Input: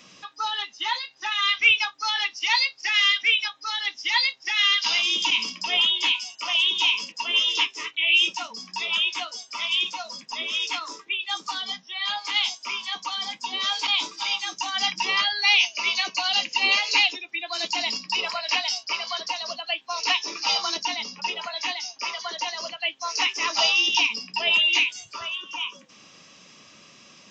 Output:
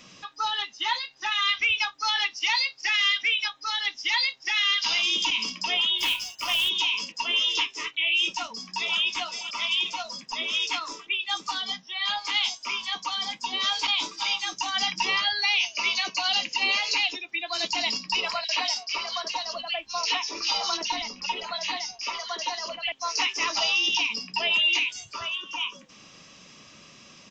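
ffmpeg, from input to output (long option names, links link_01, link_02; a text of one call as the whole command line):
ffmpeg -i in.wav -filter_complex "[0:a]asplit=3[link_01][link_02][link_03];[link_01]afade=type=out:start_time=5.98:duration=0.02[link_04];[link_02]acrusher=bits=3:mode=log:mix=0:aa=0.000001,afade=type=in:start_time=5.98:duration=0.02,afade=type=out:start_time=6.68:duration=0.02[link_05];[link_03]afade=type=in:start_time=6.68:duration=0.02[link_06];[link_04][link_05][link_06]amix=inputs=3:normalize=0,asplit=2[link_07][link_08];[link_08]afade=type=in:start_time=8.28:duration=0.01,afade=type=out:start_time=8.98:duration=0.01,aecho=0:1:520|1040|1560|2080|2600|3120:0.281838|0.155011|0.0852561|0.0468908|0.02579|0.0141845[link_09];[link_07][link_09]amix=inputs=2:normalize=0,asettb=1/sr,asplit=3[link_10][link_11][link_12];[link_10]atrim=end=18.444[link_13];[link_11]atrim=start=18.44:end=22.92,asetpts=PTS-STARTPTS,afade=type=in:duration=0.004:curve=qsin,afade=type=out:start_time=4.476:duration=0.004:curve=qsin,acrossover=split=160|2300[link_14][link_15][link_16];[link_15]adelay=50[link_17];[link_14]adelay=450[link_18];[link_18][link_17][link_16]amix=inputs=3:normalize=0,atrim=end_sample=197568[link_19];[link_12]atrim=start=22.916[link_20];[link_13][link_19]acrossfade=duration=0.004:curve1=hsin:curve2=qsin[link_21];[link_21][link_20]acrossfade=duration=0.004:curve1=qsin:curve2=hsin,lowshelf=frequency=89:gain=12,alimiter=limit=-15dB:level=0:latency=1:release=85" out.wav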